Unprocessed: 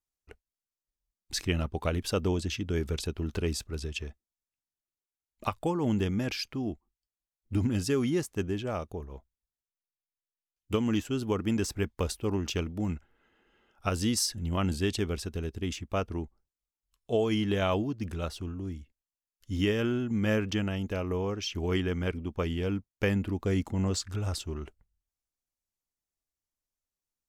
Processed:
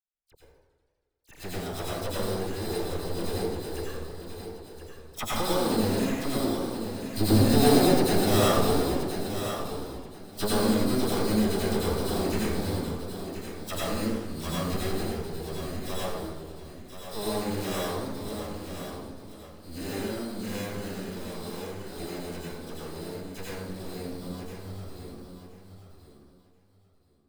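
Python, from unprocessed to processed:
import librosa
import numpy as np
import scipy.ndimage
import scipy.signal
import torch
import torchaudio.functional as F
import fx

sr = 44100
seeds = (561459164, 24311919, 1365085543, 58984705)

p1 = fx.doppler_pass(x, sr, speed_mps=19, closest_m=24.0, pass_at_s=8.29)
p2 = fx.rider(p1, sr, range_db=4, speed_s=0.5)
p3 = p1 + (p2 * librosa.db_to_amplitude(-0.5))
p4 = fx.env_lowpass(p3, sr, base_hz=2000.0, full_db=-31.0)
p5 = fx.spacing_loss(p4, sr, db_at_10k=37)
p6 = fx.sample_hold(p5, sr, seeds[0], rate_hz=4500.0, jitter_pct=0)
p7 = np.maximum(p6, 0.0)
p8 = fx.tilt_shelf(p7, sr, db=-3.5, hz=1400.0)
p9 = fx.dispersion(p8, sr, late='lows', ms=50.0, hz=2100.0)
p10 = p9 + fx.echo_feedback(p9, sr, ms=1029, feedback_pct=20, wet_db=-9.0, dry=0)
p11 = fx.rev_plate(p10, sr, seeds[1], rt60_s=0.98, hf_ratio=0.5, predelay_ms=75, drr_db=-6.5)
p12 = fx.echo_warbled(p11, sr, ms=80, feedback_pct=78, rate_hz=2.8, cents=204, wet_db=-15.0)
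y = p12 * librosa.db_to_amplitude(6.5)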